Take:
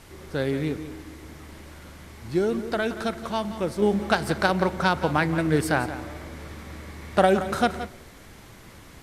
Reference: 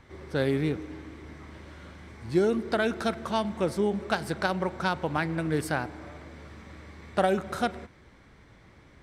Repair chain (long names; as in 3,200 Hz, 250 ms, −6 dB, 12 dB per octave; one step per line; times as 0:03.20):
noise reduction from a noise print 8 dB
echo removal 174 ms −13 dB
level 0 dB, from 0:03.82 −5.5 dB